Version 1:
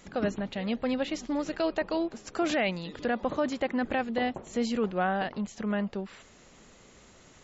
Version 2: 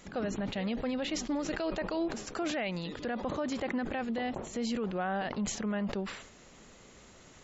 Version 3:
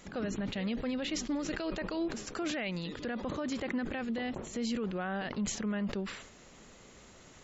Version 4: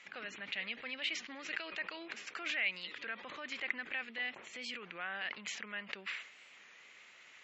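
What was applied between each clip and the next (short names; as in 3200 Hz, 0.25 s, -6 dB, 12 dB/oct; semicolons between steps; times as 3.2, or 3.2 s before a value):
limiter -25 dBFS, peak gain reduction 7 dB; sustainer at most 75 dB/s
dynamic EQ 750 Hz, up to -6 dB, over -49 dBFS, Q 1.4
band-pass 2300 Hz, Q 2.6; record warp 33 1/3 rpm, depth 100 cents; gain +7.5 dB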